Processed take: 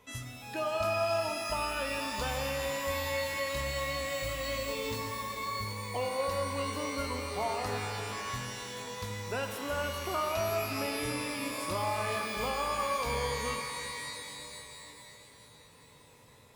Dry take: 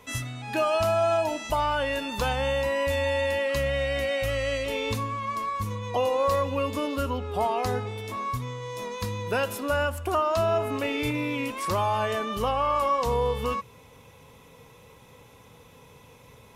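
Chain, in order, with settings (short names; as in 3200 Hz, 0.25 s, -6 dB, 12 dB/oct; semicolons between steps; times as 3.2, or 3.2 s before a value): shimmer reverb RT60 3.2 s, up +12 st, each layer -2 dB, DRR 5 dB; gain -9 dB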